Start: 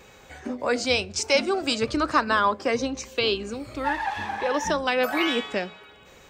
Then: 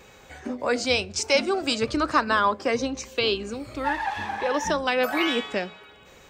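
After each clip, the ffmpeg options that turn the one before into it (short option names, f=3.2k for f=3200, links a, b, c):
-af anull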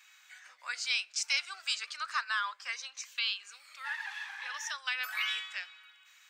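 -af "highpass=f=1.4k:w=0.5412,highpass=f=1.4k:w=1.3066,volume=-5.5dB"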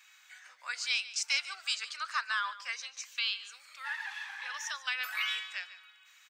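-af "aecho=1:1:146:0.158"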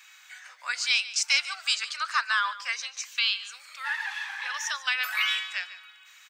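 -af "highpass=f=490:w=0.5412,highpass=f=490:w=1.3066,volume=7dB"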